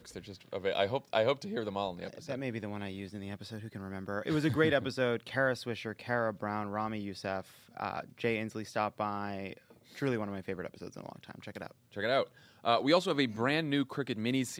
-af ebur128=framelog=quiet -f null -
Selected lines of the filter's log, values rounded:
Integrated loudness:
  I:         -33.8 LUFS
  Threshold: -44.3 LUFS
Loudness range:
  LRA:         5.5 LU
  Threshold: -54.9 LUFS
  LRA low:   -37.9 LUFS
  LRA high:  -32.3 LUFS